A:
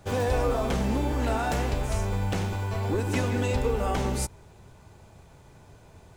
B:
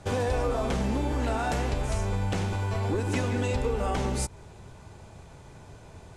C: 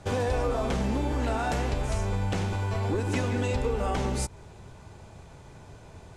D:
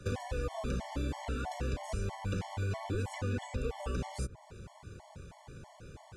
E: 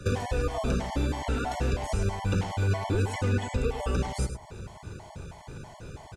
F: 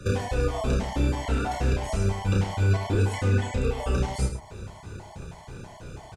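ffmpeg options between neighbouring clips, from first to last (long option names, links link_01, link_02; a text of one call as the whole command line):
ffmpeg -i in.wav -af "lowpass=frequency=11000:width=0.5412,lowpass=frequency=11000:width=1.3066,acompressor=threshold=-32dB:ratio=2,volume=4dB" out.wav
ffmpeg -i in.wav -af "equalizer=frequency=10000:width_type=o:width=0.77:gain=-2" out.wav
ffmpeg -i in.wav -filter_complex "[0:a]acrossover=split=210|540|1700[link_01][link_02][link_03][link_04];[link_01]acompressor=threshold=-32dB:ratio=4[link_05];[link_02]acompressor=threshold=-42dB:ratio=4[link_06];[link_03]acompressor=threshold=-42dB:ratio=4[link_07];[link_04]acompressor=threshold=-46dB:ratio=4[link_08];[link_05][link_06][link_07][link_08]amix=inputs=4:normalize=0,afftfilt=real='re*gt(sin(2*PI*3.1*pts/sr)*(1-2*mod(floor(b*sr/1024/580),2)),0)':imag='im*gt(sin(2*PI*3.1*pts/sr)*(1-2*mod(floor(b*sr/1024/580),2)),0)':win_size=1024:overlap=0.75" out.wav
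ffmpeg -i in.wav -af "aecho=1:1:102:0.316,volume=7.5dB" out.wav
ffmpeg -i in.wav -filter_complex "[0:a]asplit=2[link_01][link_02];[link_02]adelay=31,volume=-3dB[link_03];[link_01][link_03]amix=inputs=2:normalize=0" out.wav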